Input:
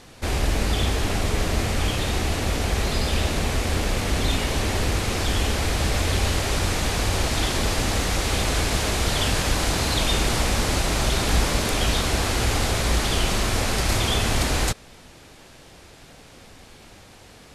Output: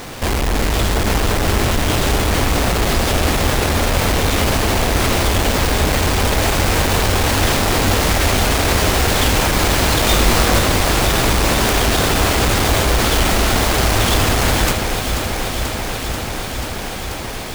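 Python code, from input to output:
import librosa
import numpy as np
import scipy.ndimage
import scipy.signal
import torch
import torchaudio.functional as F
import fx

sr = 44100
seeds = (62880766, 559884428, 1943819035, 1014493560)

p1 = fx.halfwave_hold(x, sr)
p2 = fx.low_shelf(p1, sr, hz=280.0, db=-6.5)
p3 = fx.over_compress(p2, sr, threshold_db=-29.0, ratio=-1.0)
p4 = p2 + F.gain(torch.from_numpy(p3), 3.0).numpy()
p5 = fx.doubler(p4, sr, ms=21.0, db=-2.5, at=(10.02, 10.59))
y = fx.echo_alternate(p5, sr, ms=243, hz=2400.0, feedback_pct=90, wet_db=-7)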